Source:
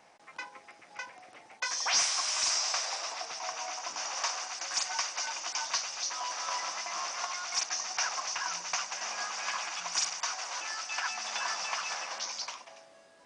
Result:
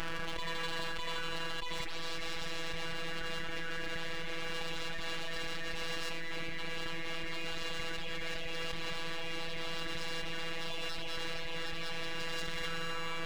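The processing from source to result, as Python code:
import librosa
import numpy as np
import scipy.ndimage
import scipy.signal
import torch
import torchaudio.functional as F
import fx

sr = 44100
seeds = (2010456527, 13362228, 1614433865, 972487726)

p1 = scipy.signal.sosfilt(scipy.signal.butter(4, 2600.0, 'lowpass', fs=sr, output='sos'), x)
p2 = np.abs(p1)
p3 = fx.robotise(p2, sr, hz=165.0)
p4 = 10.0 ** (-23.5 / 20.0) * np.tanh(p3 / 10.0 ** (-23.5 / 20.0))
p5 = p4 + fx.echo_thinned(p4, sr, ms=83, feedback_pct=73, hz=300.0, wet_db=-8.5, dry=0)
p6 = fx.env_flatten(p5, sr, amount_pct=100)
y = p6 * 10.0 ** (-2.5 / 20.0)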